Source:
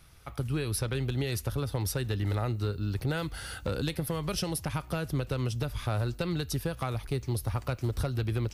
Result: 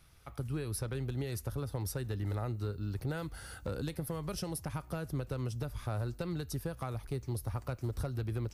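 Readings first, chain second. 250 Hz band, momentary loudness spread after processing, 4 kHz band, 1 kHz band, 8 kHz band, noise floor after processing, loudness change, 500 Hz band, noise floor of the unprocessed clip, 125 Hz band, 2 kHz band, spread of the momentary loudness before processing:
−5.5 dB, 3 LU, −10.5 dB, −6.5 dB, −6.5 dB, −54 dBFS, −6.0 dB, −5.5 dB, −48 dBFS, −5.5 dB, −8.5 dB, 3 LU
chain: dynamic equaliser 3,100 Hz, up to −7 dB, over −54 dBFS, Q 1
level −5.5 dB

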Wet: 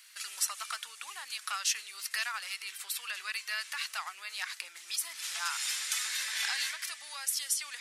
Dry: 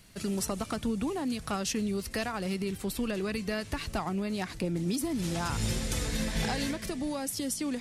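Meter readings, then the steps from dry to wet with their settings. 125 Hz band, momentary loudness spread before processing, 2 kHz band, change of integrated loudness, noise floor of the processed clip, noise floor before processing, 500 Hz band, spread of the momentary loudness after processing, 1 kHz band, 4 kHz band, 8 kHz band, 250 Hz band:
below −40 dB, 3 LU, +3.5 dB, −1.5 dB, −52 dBFS, −46 dBFS, −26.0 dB, 8 LU, −4.0 dB, +4.0 dB, +4.0 dB, below −40 dB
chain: high-pass filter 1,300 Hz 24 dB per octave
level +4 dB

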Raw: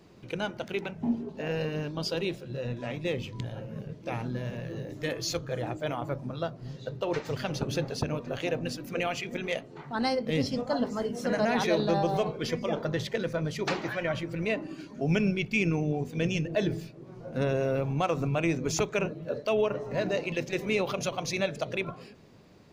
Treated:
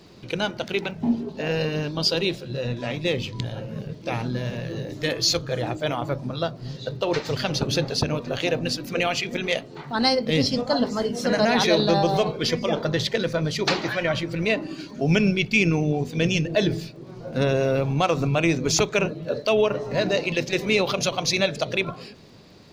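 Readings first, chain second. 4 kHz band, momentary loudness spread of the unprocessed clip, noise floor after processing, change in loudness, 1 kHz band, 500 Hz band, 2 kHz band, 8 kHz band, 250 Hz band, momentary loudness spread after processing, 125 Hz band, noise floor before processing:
+12.0 dB, 9 LU, −43 dBFS, +7.0 dB, +6.0 dB, +6.0 dB, +7.5 dB, +9.5 dB, +6.0 dB, 10 LU, +6.0 dB, −49 dBFS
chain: parametric band 4,300 Hz +8 dB 0.95 octaves
surface crackle 59 per second −57 dBFS
level +6 dB

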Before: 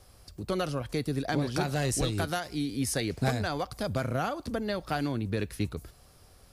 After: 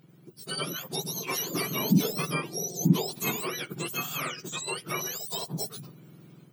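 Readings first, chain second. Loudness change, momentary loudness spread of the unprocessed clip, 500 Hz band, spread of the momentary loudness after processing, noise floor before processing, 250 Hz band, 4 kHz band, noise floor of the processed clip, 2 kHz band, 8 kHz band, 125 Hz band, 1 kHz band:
+1.5 dB, 5 LU, −3.5 dB, 9 LU, −57 dBFS, +1.5 dB, +4.5 dB, −55 dBFS, +1.0 dB, +5.5 dB, −1.0 dB, −2.5 dB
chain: frequency axis turned over on the octave scale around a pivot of 1,300 Hz
automatic gain control gain up to 6 dB
level −3.5 dB

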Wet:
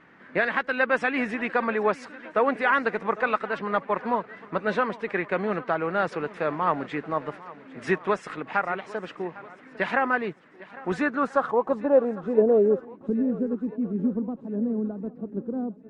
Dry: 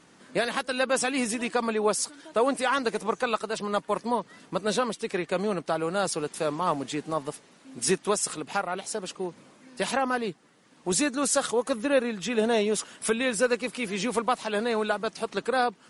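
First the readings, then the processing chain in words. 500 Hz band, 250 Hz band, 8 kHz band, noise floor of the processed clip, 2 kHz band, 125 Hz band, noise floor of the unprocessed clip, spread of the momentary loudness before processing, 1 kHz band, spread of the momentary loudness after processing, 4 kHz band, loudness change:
+1.5 dB, +2.5 dB, below −25 dB, −50 dBFS, +4.0 dB, +1.5 dB, −57 dBFS, 8 LU, +2.0 dB, 12 LU, −11.0 dB, +1.5 dB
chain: low-pass filter sweep 1,900 Hz → 260 Hz, 0:10.84–0:13.18
feedback echo with a long and a short gap by turns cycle 1,338 ms, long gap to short 1.5 to 1, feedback 33%, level −19 dB

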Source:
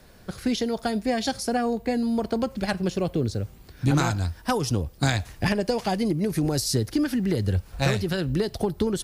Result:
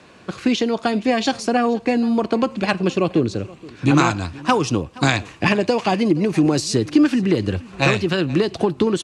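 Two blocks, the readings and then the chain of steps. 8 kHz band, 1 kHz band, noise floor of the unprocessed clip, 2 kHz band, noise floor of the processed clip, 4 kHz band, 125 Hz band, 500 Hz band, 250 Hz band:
+2.0 dB, +8.0 dB, −49 dBFS, +8.5 dB, −46 dBFS, +5.5 dB, +2.0 dB, +6.5 dB, +7.0 dB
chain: loudspeaker in its box 140–7,800 Hz, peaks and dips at 320 Hz +6 dB, 1,100 Hz +8 dB, 2,600 Hz +9 dB, 5,200 Hz −5 dB
single-tap delay 474 ms −21 dB
level +5.5 dB

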